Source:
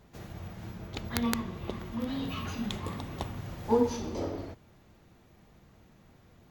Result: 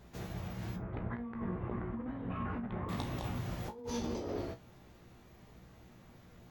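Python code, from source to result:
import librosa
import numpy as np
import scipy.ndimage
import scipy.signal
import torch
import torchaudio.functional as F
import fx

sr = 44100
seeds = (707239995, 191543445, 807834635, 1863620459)

y = fx.over_compress(x, sr, threshold_db=-37.0, ratio=-1.0)
y = fx.lowpass(y, sr, hz=1800.0, slope=24, at=(0.76, 2.89))
y = fx.comb_fb(y, sr, f0_hz=60.0, decay_s=0.18, harmonics='all', damping=0.0, mix_pct=90)
y = y * 10.0 ** (3.0 / 20.0)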